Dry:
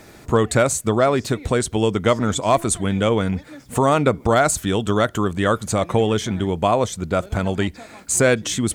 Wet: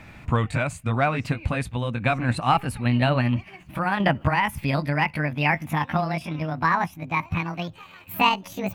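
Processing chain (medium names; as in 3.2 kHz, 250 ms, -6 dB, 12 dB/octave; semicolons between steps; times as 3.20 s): pitch bend over the whole clip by +11 st starting unshifted; tone controls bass +8 dB, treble -11 dB; random-step tremolo; fifteen-band graphic EQ 400 Hz -10 dB, 1 kHz +4 dB, 2.5 kHz +11 dB; trim -3 dB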